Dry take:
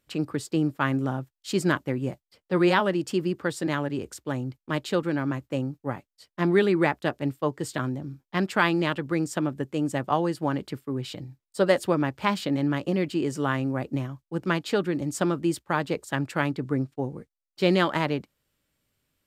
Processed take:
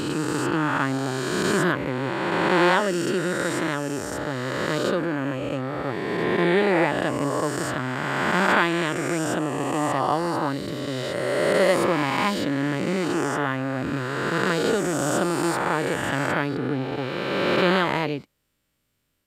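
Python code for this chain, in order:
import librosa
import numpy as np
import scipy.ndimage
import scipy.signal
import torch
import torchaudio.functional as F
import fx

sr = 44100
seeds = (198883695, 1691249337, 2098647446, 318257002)

y = fx.spec_swells(x, sr, rise_s=2.9)
y = y * librosa.db_to_amplitude(-2.0)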